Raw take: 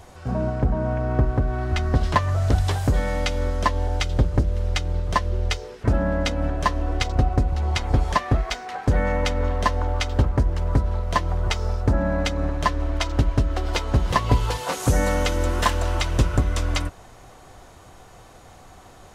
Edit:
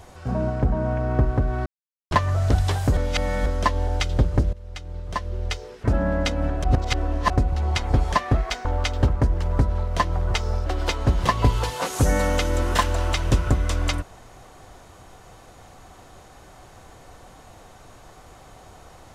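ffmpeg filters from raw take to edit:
ffmpeg -i in.wav -filter_complex "[0:a]asplit=10[link_01][link_02][link_03][link_04][link_05][link_06][link_07][link_08][link_09][link_10];[link_01]atrim=end=1.66,asetpts=PTS-STARTPTS,afade=type=out:start_time=1.656:duration=0.004:curve=hsin[link_11];[link_02]atrim=start=1.66:end=2.11,asetpts=PTS-STARTPTS,volume=0[link_12];[link_03]atrim=start=2.11:end=2.972,asetpts=PTS-STARTPTS,afade=type=in:duration=0.004:curve=hsin[link_13];[link_04]atrim=start=2.968:end=3.462,asetpts=PTS-STARTPTS,areverse[link_14];[link_05]atrim=start=3.458:end=4.53,asetpts=PTS-STARTPTS,afade=type=out:start_time=1.068:duration=0.004:curve=hsin:silence=0.112202[link_15];[link_06]atrim=start=4.53:end=6.642,asetpts=PTS-STARTPTS,afade=type=in:duration=1.54:silence=0.112202[link_16];[link_07]atrim=start=6.638:end=7.302,asetpts=PTS-STARTPTS,areverse[link_17];[link_08]atrim=start=7.298:end=8.652[link_18];[link_09]atrim=start=9.808:end=11.822[link_19];[link_10]atrim=start=13.528[link_20];[link_11][link_12][link_13]concat=n=3:v=0:a=1[link_21];[link_21][link_14]acrossfade=duration=0.004:curve1=hsin:curve2=hsin[link_22];[link_15][link_16]concat=n=2:v=0:a=1[link_23];[link_22][link_23]acrossfade=duration=0.004:curve1=hsin:curve2=hsin[link_24];[link_24][link_17]acrossfade=duration=0.004:curve1=hsin:curve2=hsin[link_25];[link_25][link_18]acrossfade=duration=0.004:curve1=hsin:curve2=hsin[link_26];[link_26][link_19]acrossfade=duration=0.004:curve1=hsin:curve2=hsin[link_27];[link_27][link_20]acrossfade=duration=0.004:curve1=hsin:curve2=hsin" out.wav

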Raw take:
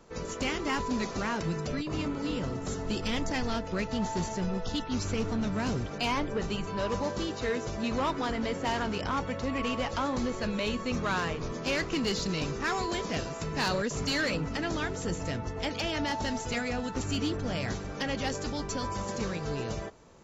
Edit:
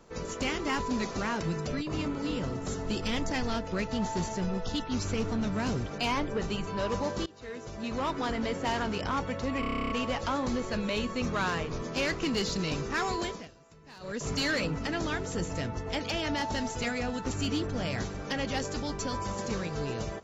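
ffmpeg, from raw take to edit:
ffmpeg -i in.wav -filter_complex "[0:a]asplit=14[link_01][link_02][link_03][link_04][link_05][link_06][link_07][link_08][link_09][link_10][link_11][link_12][link_13][link_14];[link_01]atrim=end=7.26,asetpts=PTS-STARTPTS,afade=type=out:start_time=7.256:duration=0.004:curve=hsin:silence=0.0794328[link_15];[link_02]atrim=start=7.26:end=9.632,asetpts=PTS-STARTPTS,afade=type=in:duration=1.01:silence=0.0794328[link_16];[link_03]atrim=start=9.598:end=9.632[link_17];[link_04]atrim=start=9.598:end=9.632[link_18];[link_05]atrim=start=9.598:end=9.632[link_19];[link_06]atrim=start=9.598:end=9.632[link_20];[link_07]atrim=start=9.598:end=9.632[link_21];[link_08]atrim=start=9.598:end=9.632[link_22];[link_09]atrim=start=9.598:end=9.632[link_23];[link_10]atrim=start=9.598:end=9.632[link_24];[link_11]atrim=start=9.598:end=9.632[link_25];[link_12]atrim=start=9.598:end=13.18,asetpts=PTS-STARTPTS,afade=type=out:start_time=3.312:duration=0.27:silence=0.0891251[link_26];[link_13]atrim=start=13.18:end=13.7,asetpts=PTS-STARTPTS,volume=-21dB[link_27];[link_14]atrim=start=13.7,asetpts=PTS-STARTPTS,afade=type=in:duration=0.27:silence=0.0891251[link_28];[link_15][link_16]concat=n=2:v=0:a=1[link_29];[link_29][link_17]acrossfade=duration=0.004:curve1=hsin:curve2=hsin[link_30];[link_30][link_18]acrossfade=duration=0.004:curve1=hsin:curve2=hsin[link_31];[link_31][link_19]acrossfade=duration=0.004:curve1=hsin:curve2=hsin[link_32];[link_32][link_20]acrossfade=duration=0.004:curve1=hsin:curve2=hsin[link_33];[link_33][link_21]acrossfade=duration=0.004:curve1=hsin:curve2=hsin[link_34];[link_34][link_22]acrossfade=duration=0.004:curve1=hsin:curve2=hsin[link_35];[link_35][link_23]acrossfade=duration=0.004:curve1=hsin:curve2=hsin[link_36];[link_36][link_24]acrossfade=duration=0.004:curve1=hsin:curve2=hsin[link_37];[link_37][link_25]acrossfade=duration=0.004:curve1=hsin:curve2=hsin[link_38];[link_26][link_27][link_28]concat=n=3:v=0:a=1[link_39];[link_38][link_39]acrossfade=duration=0.004:curve1=hsin:curve2=hsin" out.wav

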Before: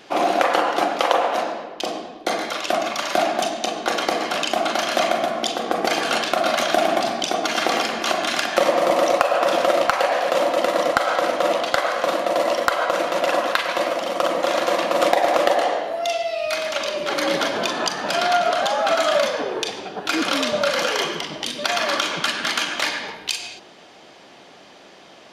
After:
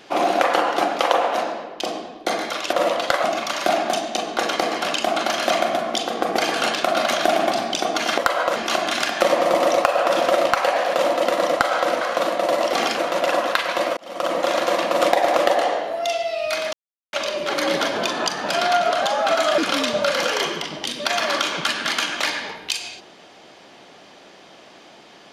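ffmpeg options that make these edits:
ffmpeg -i in.wav -filter_complex "[0:a]asplit=11[link_01][link_02][link_03][link_04][link_05][link_06][link_07][link_08][link_09][link_10][link_11];[link_01]atrim=end=2.732[link_12];[link_02]atrim=start=11.368:end=11.882[link_13];[link_03]atrim=start=2.728:end=7.672[link_14];[link_04]atrim=start=12.598:end=12.982[link_15];[link_05]atrim=start=7.918:end=11.372[link_16];[link_06]atrim=start=11.878:end=12.602[link_17];[link_07]atrim=start=7.668:end=7.922[link_18];[link_08]atrim=start=12.978:end=13.97,asetpts=PTS-STARTPTS,afade=type=out:start_time=0.988:duration=0.004:curve=hsin[link_19];[link_09]atrim=start=13.97:end=16.73,asetpts=PTS-STARTPTS,afade=type=in:duration=0.37,afade=type=out:start_time=2.756:duration=0.004:curve=hsin,apad=pad_dur=0.4[link_20];[link_10]atrim=start=16.73:end=19.182,asetpts=PTS-STARTPTS,afade=type=in:duration=0.004:curve=hsin[link_21];[link_11]atrim=start=20.168[link_22];[link_12][link_13]acrossfade=duration=0.004:curve1=hsin:curve2=hsin[link_23];[link_23][link_14]acrossfade=duration=0.004:curve1=hsin:curve2=hsin[link_24];[link_24][link_15]acrossfade=duration=0.004:curve1=hsin:curve2=hsin[link_25];[link_25][link_16]acrossfade=duration=0.004:curve1=hsin:curve2=hsin[link_26];[link_26][link_17]acrossfade=duration=0.004:curve1=hsin:curve2=hsin[link_27];[link_27][link_18]acrossfade=duration=0.004:curve1=hsin:curve2=hsin[link_28];[link_19][link_20][link_21]concat=n=3:v=0:a=1[link_29];[link_28][link_29]acrossfade=duration=0.004:curve1=hsin:curve2=hsin[link_30];[link_30][link_22]acrossfade=duration=0.004:curve1=hsin:curve2=hsin" out.wav

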